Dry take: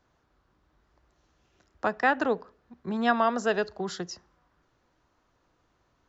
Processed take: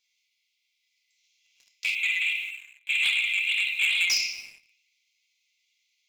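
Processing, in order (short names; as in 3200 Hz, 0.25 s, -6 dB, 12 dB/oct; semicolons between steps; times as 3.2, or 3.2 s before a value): rattling part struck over -35 dBFS, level -22 dBFS; compressor 4:1, threshold -26 dBFS, peak gain reduction 7.5 dB; brick-wall FIR high-pass 2000 Hz; reverb RT60 1.5 s, pre-delay 4 ms, DRR -5.5 dB; 1.95–4.1 LPC vocoder at 8 kHz pitch kept; sample leveller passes 2; gain +5.5 dB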